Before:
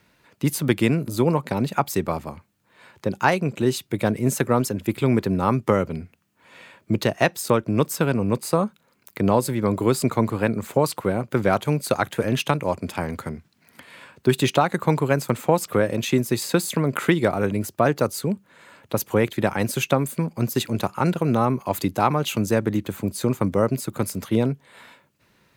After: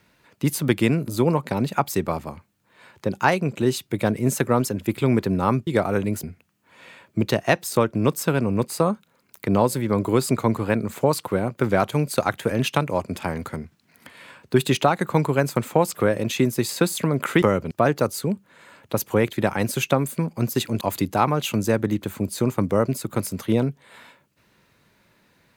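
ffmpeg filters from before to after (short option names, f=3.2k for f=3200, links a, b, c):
-filter_complex "[0:a]asplit=6[a][b][c][d][e][f];[a]atrim=end=5.672[g];[b]atrim=start=17.148:end=17.712[h];[c]atrim=start=5.958:end=17.152[i];[d]atrim=start=5.668:end=5.962[j];[e]atrim=start=17.708:end=20.812[k];[f]atrim=start=21.638[l];[g][h]acrossfade=d=0.004:c1=hsin:c2=hsin[m];[m][i]acrossfade=d=0.004:c1=hsin:c2=hsin[n];[n][j]acrossfade=d=0.004:c1=hsin:c2=hsin[o];[o][k]acrossfade=d=0.004:c1=hsin:c2=hsin[p];[p][l]acrossfade=d=0.004:c1=hsin:c2=hsin"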